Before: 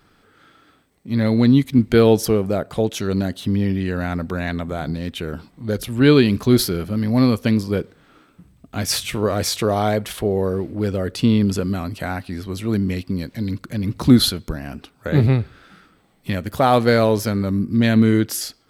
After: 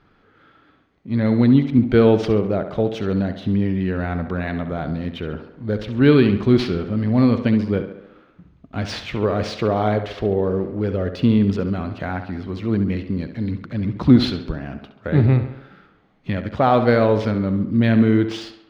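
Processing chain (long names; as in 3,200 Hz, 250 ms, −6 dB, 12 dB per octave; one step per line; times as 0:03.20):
bad sample-rate conversion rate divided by 3×, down none, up hold
high-frequency loss of the air 230 metres
on a send: tape delay 68 ms, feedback 60%, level −9 dB, low-pass 3,900 Hz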